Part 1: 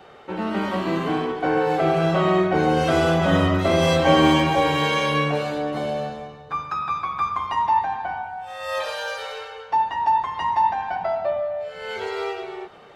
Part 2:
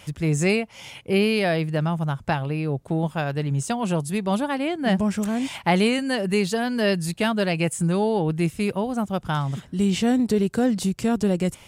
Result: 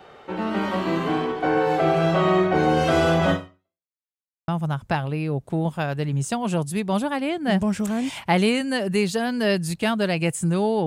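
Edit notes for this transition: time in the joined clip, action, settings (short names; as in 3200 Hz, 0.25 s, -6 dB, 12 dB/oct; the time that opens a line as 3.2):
part 1
3.31–3.89 fade out exponential
3.89–4.48 mute
4.48 switch to part 2 from 1.86 s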